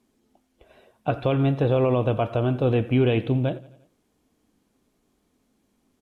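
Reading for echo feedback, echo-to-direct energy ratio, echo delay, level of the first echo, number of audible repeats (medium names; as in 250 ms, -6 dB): 57%, -19.0 dB, 87 ms, -20.5 dB, 3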